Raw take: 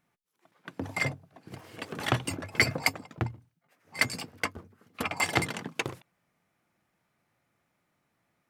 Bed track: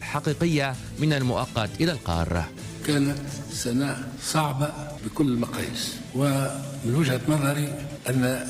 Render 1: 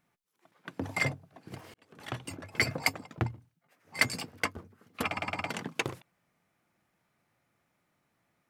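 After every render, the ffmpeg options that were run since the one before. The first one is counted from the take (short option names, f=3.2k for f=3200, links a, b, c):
-filter_complex "[0:a]asplit=6[a][b][c][d][e][f];[a]atrim=end=1.74,asetpts=PTS-STARTPTS,afade=t=out:st=1.736:d=0.004:c=hsin[g];[b]atrim=start=1.74:end=5.172,asetpts=PTS-STARTPTS,afade=t=in:d=1.38[h];[c]atrim=start=5.058:end=5.172[i];[d]atrim=start=5.058:end=5.172[j];[e]atrim=start=5.058:end=5.172[k];[f]atrim=start=5.498[l];[g][h]concat=n=2:v=0:a=1[m];[m][i]acrossfade=d=0.004:c1=hsin:c2=hsin[n];[n][j]acrossfade=d=0.004:c1=hsin:c2=hsin[o];[o][k]acrossfade=d=0.004:c1=hsin:c2=hsin[p];[p][l]acrossfade=d=0.004:c1=hsin:c2=hsin"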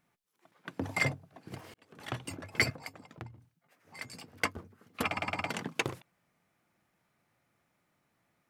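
-filter_complex "[0:a]asettb=1/sr,asplit=3[a][b][c];[a]atrim=end=2.704[d];[b]atrim=start=2.7:end=4.37,asetpts=PTS-STARTPTS,afade=t=in:d=0.004:c=qsin,afade=t=out:st=1.666:d=0.004:c=qsin,acompressor=threshold=-52dB:ratio=2:attack=3.2:release=140:knee=1:detection=peak[e];[c]atrim=start=4.366[f];[d][e]acrossfade=d=0.004:c1=hsin:c2=qsin[g];[g][f]acrossfade=d=0.004:c1=qsin:c2=hsin"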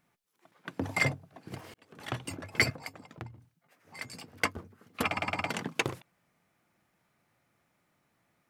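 -af "volume=2dB"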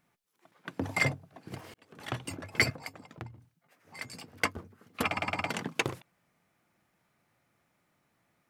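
-af anull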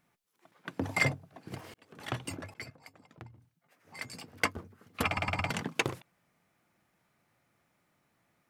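-filter_complex "[0:a]asettb=1/sr,asplit=3[a][b][c];[a]atrim=end=4.624[d];[b]atrim=start=4.62:end=5.61,asetpts=PTS-STARTPTS,afade=t=in:d=0.004:c=qsin,afade=t=out:st=0.986:d=0.004:c=qsin,asubboost=boost=11.5:cutoff=140[e];[c]atrim=start=5.606[f];[d][e]acrossfade=d=0.004:c1=hsin:c2=qsin[g];[g][f]acrossfade=d=0.004:c1=qsin:c2=hsin,asplit=2[h][i];[h]atrim=end=2.54,asetpts=PTS-STARTPTS,afade=t=out:st=2.536:d=0.004:c=hsin:silence=0.0707946[j];[i]atrim=start=2.54,asetpts=PTS-STARTPTS,afade=t=in:d=1.47:silence=0.0707946[k];[j][k]concat=n=2:v=0:a=1"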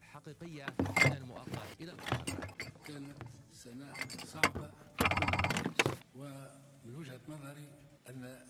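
-filter_complex "[1:a]volume=-25dB[a];[0:a][a]amix=inputs=2:normalize=0"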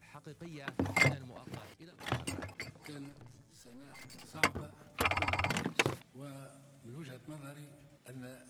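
-filter_complex "[0:a]asettb=1/sr,asplit=3[a][b][c];[a]atrim=end=3.094[d];[b]atrim=start=3.09:end=4.34,asetpts=PTS-STARTPTS,afade=t=in:d=0.004:c=qsin,afade=t=out:st=1.246:d=0.004:c=qsin,aeval=exprs='(tanh(282*val(0)+0.6)-tanh(0.6))/282':c=same[e];[c]atrim=start=4.336[f];[d][e]acrossfade=d=0.004:c1=hsin:c2=qsin[g];[g][f]acrossfade=d=0.004:c1=qsin:c2=hsin,asettb=1/sr,asplit=3[h][i][j];[h]atrim=end=4.994[k];[i]atrim=start=4.99:end=5.46,asetpts=PTS-STARTPTS,afade=t=in:d=0.004:c=qsin,afade=t=out:st=0.466:d=0.004:c=qsin,equalizer=f=180:t=o:w=0.77:g=-12.5[l];[j]atrim=start=5.456[m];[k][l]acrossfade=d=0.004:c1=hsin:c2=qsin[n];[n][m]acrossfade=d=0.004:c1=qsin:c2=hsin,asplit=2[o][p];[o]atrim=end=2,asetpts=PTS-STARTPTS,afade=t=out:st=1.05:d=0.95:silence=0.354813[q];[p]atrim=start=2,asetpts=PTS-STARTPTS,afade=t=in:d=0.004:c=hsin:silence=0.354813[r];[q][r]concat=n=2:v=0:a=1"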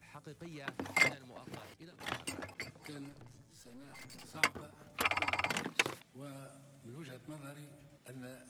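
-filter_complex "[0:a]acrossover=split=210|1100[a][b][c];[a]acompressor=threshold=-52dB:ratio=6[d];[b]alimiter=level_in=5.5dB:limit=-24dB:level=0:latency=1:release=351,volume=-5.5dB[e];[d][e][c]amix=inputs=3:normalize=0"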